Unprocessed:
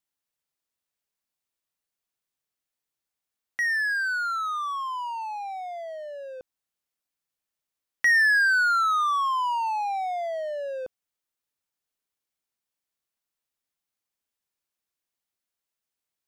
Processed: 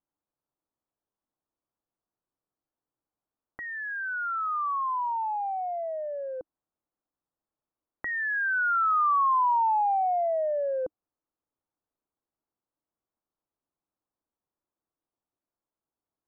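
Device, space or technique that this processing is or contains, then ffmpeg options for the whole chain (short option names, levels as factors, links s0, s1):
under water: -af "lowpass=f=1200:w=0.5412,lowpass=f=1200:w=1.3066,equalizer=f=310:t=o:w=0.32:g=6,volume=1.5"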